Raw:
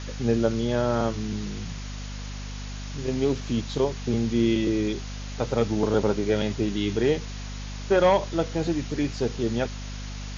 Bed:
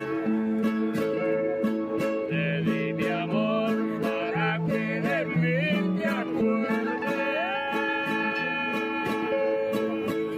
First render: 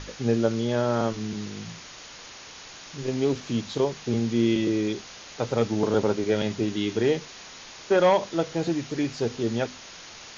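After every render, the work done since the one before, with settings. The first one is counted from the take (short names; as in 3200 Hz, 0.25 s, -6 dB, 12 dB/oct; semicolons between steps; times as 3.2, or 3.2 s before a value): notches 50/100/150/200/250 Hz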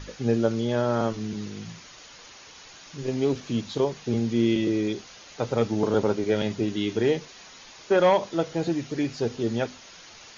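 denoiser 6 dB, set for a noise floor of -44 dBFS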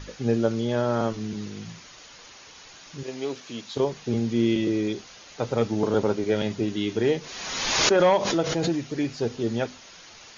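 3.03–3.77 HPF 680 Hz 6 dB/oct; 7.06–8.91 backwards sustainer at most 35 dB/s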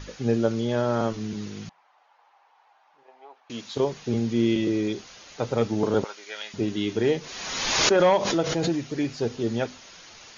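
1.69–3.5 ladder band-pass 890 Hz, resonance 70%; 6.04–6.54 HPF 1400 Hz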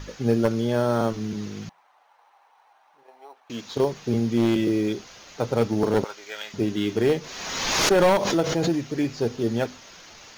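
one-sided fold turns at -17 dBFS; in parallel at -11.5 dB: sample-and-hold 9×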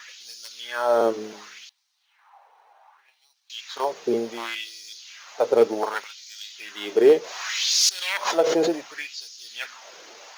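LFO high-pass sine 0.67 Hz 400–5000 Hz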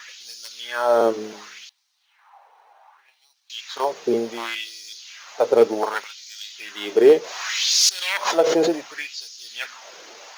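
gain +2.5 dB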